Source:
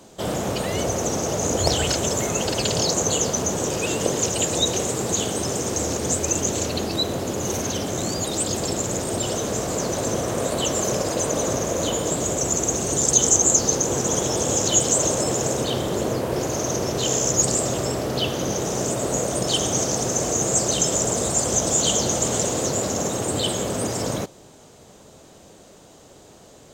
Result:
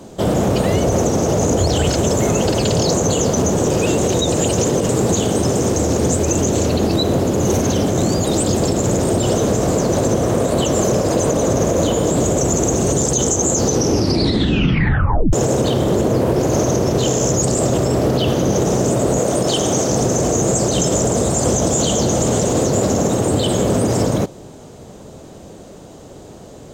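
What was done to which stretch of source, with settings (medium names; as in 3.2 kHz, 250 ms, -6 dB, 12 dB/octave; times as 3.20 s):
3.98–4.89 s: reverse
13.67 s: tape stop 1.66 s
19.19–19.90 s: bass shelf 140 Hz -9.5 dB
whole clip: tilt shelf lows +5 dB, about 780 Hz; loudness maximiser +14.5 dB; trim -6.5 dB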